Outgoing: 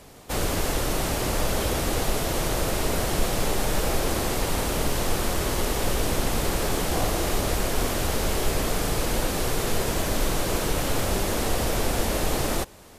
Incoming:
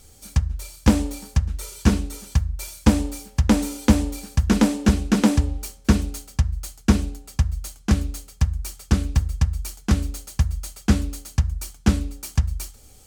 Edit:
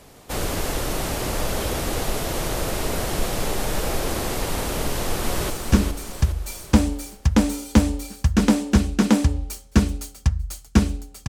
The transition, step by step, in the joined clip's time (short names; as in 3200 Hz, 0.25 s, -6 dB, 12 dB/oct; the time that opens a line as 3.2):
outgoing
4.83–5.5 echo throw 0.41 s, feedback 50%, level -5.5 dB
5.5 switch to incoming from 1.63 s